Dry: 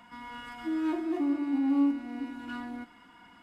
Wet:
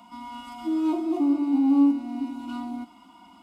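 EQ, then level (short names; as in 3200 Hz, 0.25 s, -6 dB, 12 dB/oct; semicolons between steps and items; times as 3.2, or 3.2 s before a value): HPF 60 Hz; fixed phaser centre 460 Hz, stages 6; +6.5 dB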